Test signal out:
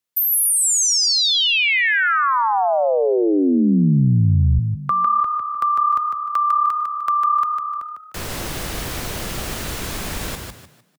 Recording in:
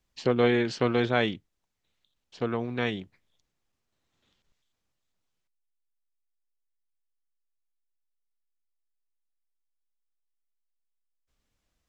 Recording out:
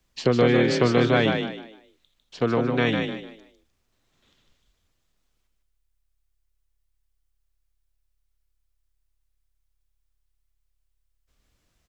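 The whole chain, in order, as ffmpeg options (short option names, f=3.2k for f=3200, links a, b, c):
-filter_complex "[0:a]equalizer=f=840:w=5.7:g=-2.5,acrossover=split=190[a][b];[b]acompressor=threshold=-24dB:ratio=6[c];[a][c]amix=inputs=2:normalize=0,asplit=2[d][e];[e]asplit=4[f][g][h][i];[f]adelay=151,afreqshift=35,volume=-5dB[j];[g]adelay=302,afreqshift=70,volume=-15.2dB[k];[h]adelay=453,afreqshift=105,volume=-25.3dB[l];[i]adelay=604,afreqshift=140,volume=-35.5dB[m];[j][k][l][m]amix=inputs=4:normalize=0[n];[d][n]amix=inputs=2:normalize=0,volume=7dB"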